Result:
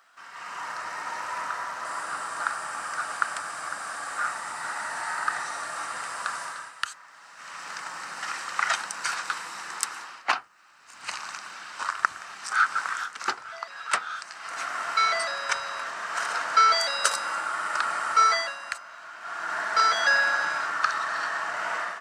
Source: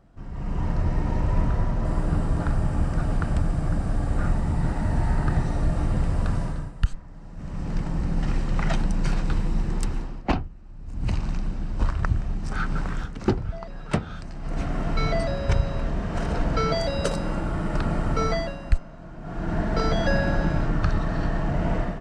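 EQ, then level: treble shelf 2.2 kHz +10.5 dB; dynamic bell 3 kHz, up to -6 dB, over -46 dBFS, Q 0.8; resonant high-pass 1.3 kHz, resonance Q 2.2; +3.0 dB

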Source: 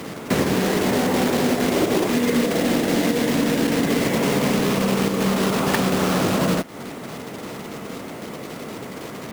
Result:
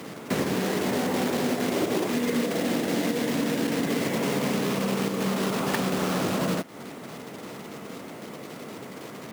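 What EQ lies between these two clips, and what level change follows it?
high-pass 100 Hz; -6.0 dB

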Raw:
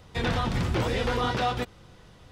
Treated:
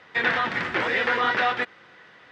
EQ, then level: band-pass 280–4400 Hz; peaking EQ 1.8 kHz +14.5 dB 1 oct; 0.0 dB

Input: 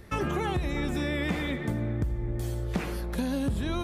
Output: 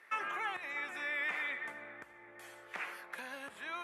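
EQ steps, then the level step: high-pass 1.2 kHz 12 dB/octave; Chebyshev low-pass 12 kHz, order 4; resonant high shelf 3 kHz -10.5 dB, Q 1.5; 0.0 dB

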